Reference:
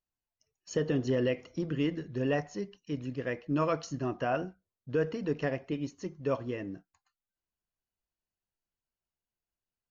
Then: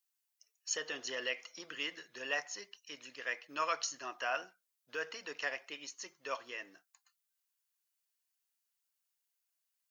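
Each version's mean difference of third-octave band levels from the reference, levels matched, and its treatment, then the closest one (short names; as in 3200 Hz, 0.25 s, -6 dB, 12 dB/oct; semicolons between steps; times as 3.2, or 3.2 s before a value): 11.5 dB: HPF 1200 Hz 12 dB/oct; high shelf 5300 Hz +10.5 dB; gain +2.5 dB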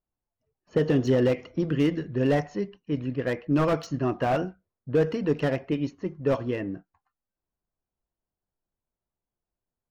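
2.0 dB: low-pass opened by the level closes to 970 Hz, open at -24.5 dBFS; slew limiter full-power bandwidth 31 Hz; gain +7 dB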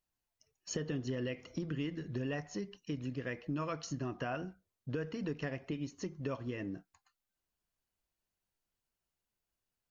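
3.0 dB: dynamic EQ 560 Hz, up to -6 dB, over -40 dBFS, Q 0.78; compressor 3:1, threshold -40 dBFS, peak gain reduction 10 dB; gain +3.5 dB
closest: second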